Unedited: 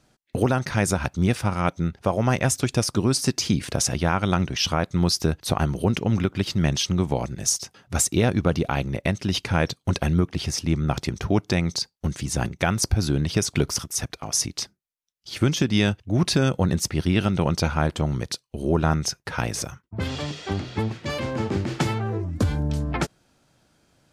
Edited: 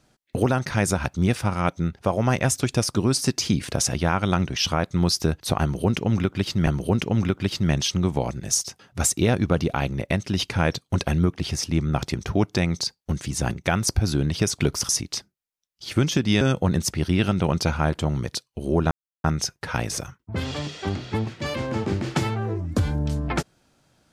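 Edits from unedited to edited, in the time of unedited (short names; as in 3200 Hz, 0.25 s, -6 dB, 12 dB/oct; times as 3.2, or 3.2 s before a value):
5.62–6.67 loop, 2 plays
13.84–14.34 cut
15.86–16.38 cut
18.88 insert silence 0.33 s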